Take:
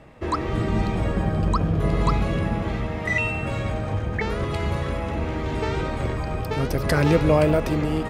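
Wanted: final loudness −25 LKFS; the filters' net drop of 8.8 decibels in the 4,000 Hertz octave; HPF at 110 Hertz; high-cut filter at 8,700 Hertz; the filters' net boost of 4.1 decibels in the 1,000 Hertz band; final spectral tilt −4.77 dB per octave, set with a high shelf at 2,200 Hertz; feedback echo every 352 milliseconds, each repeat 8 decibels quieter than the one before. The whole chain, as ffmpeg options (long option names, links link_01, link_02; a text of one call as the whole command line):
ffmpeg -i in.wav -af "highpass=110,lowpass=8700,equalizer=frequency=1000:width_type=o:gain=7,highshelf=frequency=2200:gain=-8.5,equalizer=frequency=4000:width_type=o:gain=-4,aecho=1:1:352|704|1056|1408|1760:0.398|0.159|0.0637|0.0255|0.0102,volume=-1.5dB" out.wav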